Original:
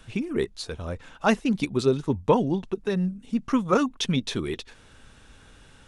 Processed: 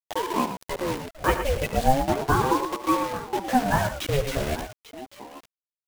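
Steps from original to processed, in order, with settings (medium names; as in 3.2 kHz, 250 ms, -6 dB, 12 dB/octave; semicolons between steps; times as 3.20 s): high-order bell 5.6 kHz -10 dB; in parallel at +2 dB: peak limiter -17 dBFS, peak gain reduction 9.5 dB; on the sum: chorus voices 6, 0.72 Hz, delay 14 ms, depth 1.8 ms; bit crusher 5-bit; on a send: multi-tap echo 73/112/844 ms -14.5/-9/-15.5 dB; on the sum: ring modulator with a swept carrier 500 Hz, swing 45%, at 0.35 Hz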